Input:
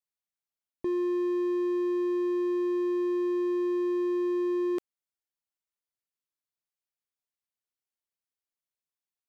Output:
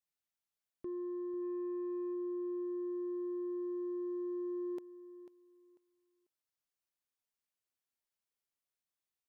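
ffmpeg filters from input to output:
-filter_complex "[0:a]asplit=3[a][b][c];[a]afade=t=out:st=1.41:d=0.02[d];[b]equalizer=f=1.2k:w=0.95:g=-5.5,afade=t=in:st=1.41:d=0.02,afade=t=out:st=2.13:d=0.02[e];[c]afade=t=in:st=2.13:d=0.02[f];[d][e][f]amix=inputs=3:normalize=0,alimiter=level_in=5.5dB:limit=-24dB:level=0:latency=1,volume=-5.5dB,asoftclip=type=tanh:threshold=-36dB,aecho=1:1:494|988|1482:0.2|0.0459|0.0106,volume=-1dB"

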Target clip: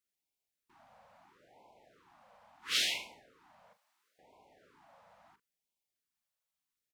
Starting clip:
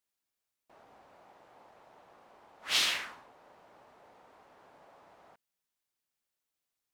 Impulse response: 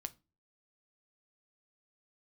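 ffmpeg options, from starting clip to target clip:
-filter_complex "[0:a]asettb=1/sr,asplit=3[a][b][c];[a]atrim=end=3.734[d];[b]atrim=start=3.73:end=4.19,asetpts=PTS-STARTPTS,afade=t=in:d=0.004:c=qsin,afade=t=out:st=0.456:d=0.004:c=qsin,aderivative[e];[c]atrim=start=4.186[f];[d][e]acrossfade=d=0.004:c1=hsin:c2=qsin[g];[g][f]acrossfade=d=0.004:c1=qsin:c2=hsin,asplit=2[h][i];[i]adelay=40,volume=-11dB[j];[h][j]amix=inputs=2:normalize=0,afftfilt=real='re*(1-between(b*sr/1024,320*pow(1500/320,0.5+0.5*sin(2*PI*0.74*pts/sr))/1.41,320*pow(1500/320,0.5+0.5*sin(2*PI*0.74*pts/sr))*1.41))':imag='im*(1-between(b*sr/1024,320*pow(1500/320,0.5+0.5*sin(2*PI*0.74*pts/sr))/1.41,320*pow(1500/320,0.5+0.5*sin(2*PI*0.74*pts/sr))*1.41))':win_size=1024:overlap=0.75,volume=-3dB"

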